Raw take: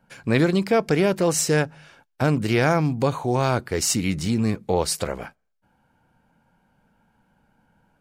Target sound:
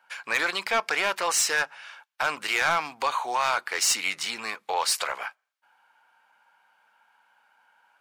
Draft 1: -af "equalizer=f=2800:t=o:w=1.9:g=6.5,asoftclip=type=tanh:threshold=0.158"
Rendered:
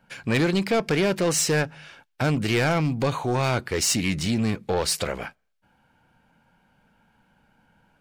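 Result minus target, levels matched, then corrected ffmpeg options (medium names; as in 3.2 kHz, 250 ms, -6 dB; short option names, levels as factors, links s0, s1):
1 kHz band -5.5 dB
-af "highpass=f=1000:t=q:w=1.7,equalizer=f=2800:t=o:w=1.9:g=6.5,asoftclip=type=tanh:threshold=0.158"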